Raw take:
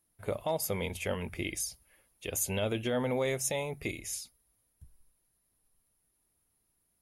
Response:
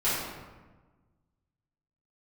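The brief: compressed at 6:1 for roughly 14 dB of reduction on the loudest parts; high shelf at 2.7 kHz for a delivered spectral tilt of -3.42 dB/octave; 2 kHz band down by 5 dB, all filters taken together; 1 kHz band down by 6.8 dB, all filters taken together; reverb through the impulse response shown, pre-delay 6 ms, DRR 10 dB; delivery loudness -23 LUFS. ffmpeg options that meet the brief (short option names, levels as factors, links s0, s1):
-filter_complex "[0:a]equalizer=f=1000:t=o:g=-8.5,equalizer=f=2000:t=o:g=-8,highshelf=f=2700:g=7,acompressor=threshold=0.0126:ratio=6,asplit=2[s0][s1];[1:a]atrim=start_sample=2205,adelay=6[s2];[s1][s2]afir=irnorm=-1:irlink=0,volume=0.0794[s3];[s0][s3]amix=inputs=2:normalize=0,volume=7.94"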